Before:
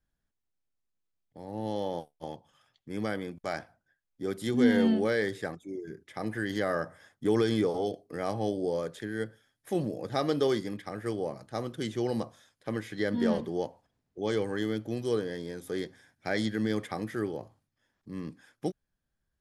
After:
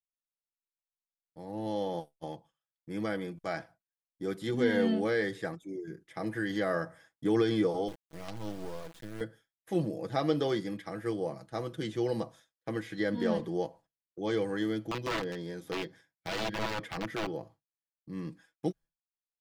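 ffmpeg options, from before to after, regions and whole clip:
-filter_complex "[0:a]asettb=1/sr,asplit=3[a][b][c];[a]atrim=end=7.884[d];[b]atrim=start=7.88:end=9.21,asetpts=PTS-STARTPTS,afade=t=in:d=0.004:c=qsin,afade=t=out:st=1.326:d=0.004:c=qsin,equalizer=f=780:w=0.41:g=-7.5,acrusher=bits=5:dc=4:mix=0:aa=0.000001[e];[c]atrim=start=9.206[f];[d][e]acrossfade=d=0.004:c1=hsin:c2=qsin[g];[g][f]acrossfade=d=0.004:c1=qsin:c2=hsin,asettb=1/sr,asplit=3[h][i][j];[h]atrim=end=14.864[k];[i]atrim=start=14.86:end=18.19,asetpts=PTS-STARTPTS,afade=t=in:d=0.004:c=qsin,afade=t=out:st=3.326:d=0.004:c=qsin,equalizer=f=9.1k:w=1.7:g=-5,aeval=exprs='(mod(17.8*val(0)+1,2)-1)/17.8':c=same[l];[j]atrim=start=18.186[m];[k][l]acrossfade=d=0.004:c1=hsin:c2=qsin[n];[n][m]acrossfade=d=0.004:c1=qsin:c2=hsin,agate=range=-33dB:threshold=-48dB:ratio=3:detection=peak,aecho=1:1:6.1:0.52,acrossover=split=5000[o][p];[p]acompressor=threshold=-54dB:ratio=4:attack=1:release=60[q];[o][q]amix=inputs=2:normalize=0,volume=-2dB"

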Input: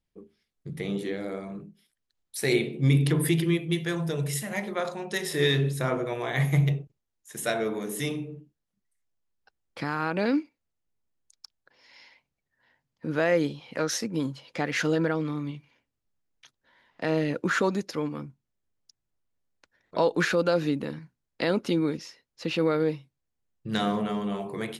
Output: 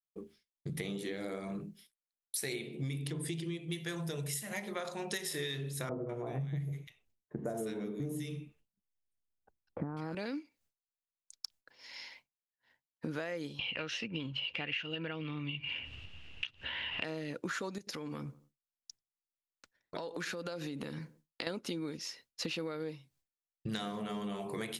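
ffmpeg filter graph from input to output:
-filter_complex "[0:a]asettb=1/sr,asplit=3[a][b][c];[a]atrim=end=3.104[d];[b]atrim=start=3.1:end=3.68,asetpts=PTS-STARTPTS,afade=t=in:d=0.004:c=qsin,afade=t=out:st=0.576:d=0.004:c=qsin,lowpass=f=8.7k:w=0.5412,lowpass=f=8.7k:w=1.3066,equalizer=f=1.6k:w=0.91:g=-6[e];[c]atrim=start=3.676[f];[d][e]acrossfade=d=0.004:c1=hsin:c2=qsin[g];[g][f]acrossfade=d=0.004:c1=qsin:c2=hsin,asettb=1/sr,asplit=3[h][i][j];[h]atrim=end=5.894[k];[i]atrim=start=5.89:end=10.15,asetpts=PTS-STARTPTS,afade=t=in:d=0.004:c=qsin,afade=t=out:st=4.256:d=0.004:c=qsin,tiltshelf=f=830:g=9,acrossover=split=1400[l][m];[m]adelay=200[n];[l][n]amix=inputs=2:normalize=0,atrim=end_sample=187866[o];[j]atrim=start=10.146[p];[k][o]acrossfade=d=0.004:c1=hsin:c2=qsin[q];[q][p]acrossfade=d=0.004:c1=qsin:c2=hsin,asettb=1/sr,asplit=3[r][s][t];[r]atrim=end=13.594[u];[s]atrim=start=13.59:end=17.04,asetpts=PTS-STARTPTS,afade=t=in:d=0.004:c=qsin,afade=t=out:st=3.446:d=0.004:c=qsin,acompressor=mode=upward:threshold=-32dB:ratio=2.5:attack=3.2:release=140:knee=2.83:detection=peak,lowpass=f=2.8k:t=q:w=14,equalizer=f=78:w=1.3:g=14.5[v];[t]atrim=start=17.036[w];[u][v]acrossfade=d=0.004:c1=hsin:c2=qsin[x];[x][w]acrossfade=d=0.004:c1=qsin:c2=hsin,asettb=1/sr,asplit=3[y][z][aa];[y]atrim=end=17.784[ab];[z]atrim=start=17.78:end=21.47,asetpts=PTS-STARTPTS,afade=t=in:d=0.004:c=qsin,afade=t=out:st=3.686:d=0.004:c=qsin,asplit=2[ac][ad];[ad]adelay=90,lowpass=f=1.3k:p=1,volume=-22dB,asplit=2[ae][af];[af]adelay=90,lowpass=f=1.3k:p=1,volume=0.42,asplit=2[ag][ah];[ah]adelay=90,lowpass=f=1.3k:p=1,volume=0.42[ai];[ac][ae][ag][ai]amix=inputs=4:normalize=0,atrim=end_sample=162729,acompressor=threshold=-36dB:ratio=10:attack=3.2:release=140:knee=1:detection=peak[aj];[aa]atrim=start=21.466[ak];[ab][aj]acrossfade=d=0.004:c1=hsin:c2=qsin[al];[al][ak]acrossfade=d=0.004:c1=qsin:c2=hsin,agate=range=-33dB:threshold=-58dB:ratio=3:detection=peak,highshelf=f=2.7k:g=8.5,acompressor=threshold=-36dB:ratio=12,volume=1dB"

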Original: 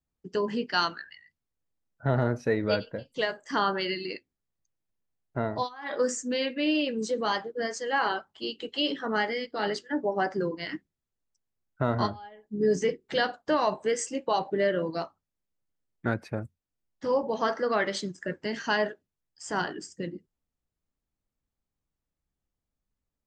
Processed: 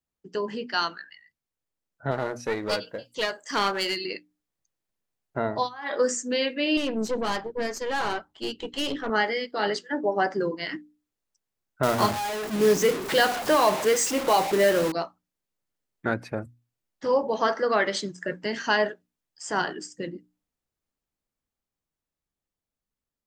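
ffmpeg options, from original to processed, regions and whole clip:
-filter_complex "[0:a]asettb=1/sr,asplit=3[a][b][c];[a]atrim=end=2.114[d];[b]atrim=start=2.11:end=4.04,asetpts=PTS-STARTPTS,afade=t=in:d=0.004:c=qsin,afade=t=out:st=1.926:d=0.004:c=qsin,bass=f=250:g=-6,treble=f=4k:g=8,aeval=exprs='clip(val(0),-1,0.0316)':c=same[e];[c]atrim=start=4.036[f];[d][e]acrossfade=d=0.004:c1=hsin:c2=qsin[g];[g][f]acrossfade=d=0.004:c1=qsin:c2=hsin,asettb=1/sr,asplit=3[h][i][j];[h]atrim=end=6.774[k];[i]atrim=start=6.77:end=9.1,asetpts=PTS-STARTPTS,afade=t=in:d=0.004:c=qsin,afade=t=out:st=2.326:d=0.004:c=qsin,aeval=exprs='(tanh(25.1*val(0)+0.65)-tanh(0.65))/25.1':c=same,lowshelf=f=320:g=9.5[l];[j]atrim=start=9.096[m];[k][l]acrossfade=d=0.004:c1=hsin:c2=qsin[n];[n][m]acrossfade=d=0.004:c1=qsin:c2=hsin,asettb=1/sr,asplit=3[o][p][q];[o]atrim=end=11.834[r];[p]atrim=start=11.83:end=14.92,asetpts=PTS-STARTPTS,afade=t=in:d=0.004:c=qsin,afade=t=out:st=3.086:d=0.004:c=qsin,aeval=exprs='val(0)+0.5*0.0355*sgn(val(0))':c=same,acrusher=bits=4:mode=log:mix=0:aa=0.000001[s];[q]atrim=start=14.916[t];[r][s]acrossfade=d=0.004:c1=hsin:c2=qsin[u];[u][t]acrossfade=d=0.004:c1=qsin:c2=hsin,lowshelf=f=160:g=-8,bandreject=f=60:t=h:w=6,bandreject=f=120:t=h:w=6,bandreject=f=180:t=h:w=6,bandreject=f=240:t=h:w=6,bandreject=f=300:t=h:w=6,dynaudnorm=f=520:g=11:m=4dB"

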